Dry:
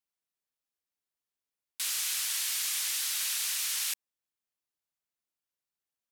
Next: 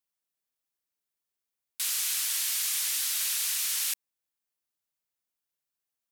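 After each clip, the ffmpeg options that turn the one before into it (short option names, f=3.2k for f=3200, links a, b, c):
-af "highshelf=f=9.1k:g=5.5"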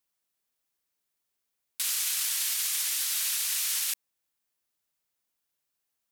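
-af "acontrast=29,alimiter=limit=-20dB:level=0:latency=1:release=17"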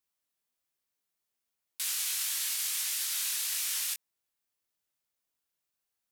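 -af "flanger=delay=19.5:depth=4.5:speed=1.7"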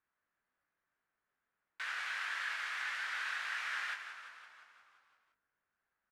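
-filter_complex "[0:a]lowpass=f=1.6k:t=q:w=3.1,asplit=2[a][b];[b]asplit=8[c][d][e][f][g][h][i][j];[c]adelay=173,afreqshift=-39,volume=-9dB[k];[d]adelay=346,afreqshift=-78,volume=-13dB[l];[e]adelay=519,afreqshift=-117,volume=-17dB[m];[f]adelay=692,afreqshift=-156,volume=-21dB[n];[g]adelay=865,afreqshift=-195,volume=-25.1dB[o];[h]adelay=1038,afreqshift=-234,volume=-29.1dB[p];[i]adelay=1211,afreqshift=-273,volume=-33.1dB[q];[j]adelay=1384,afreqshift=-312,volume=-37.1dB[r];[k][l][m][n][o][p][q][r]amix=inputs=8:normalize=0[s];[a][s]amix=inputs=2:normalize=0,volume=2.5dB"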